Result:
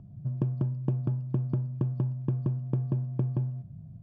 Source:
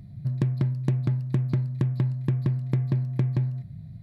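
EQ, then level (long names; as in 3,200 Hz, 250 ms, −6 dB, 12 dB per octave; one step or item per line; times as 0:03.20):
moving average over 22 samples
low-shelf EQ 210 Hz −6 dB
0.0 dB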